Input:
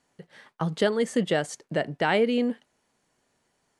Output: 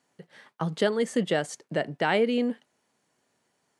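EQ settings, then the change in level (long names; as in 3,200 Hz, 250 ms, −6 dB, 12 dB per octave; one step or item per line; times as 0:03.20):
high-pass filter 110 Hz
−1.0 dB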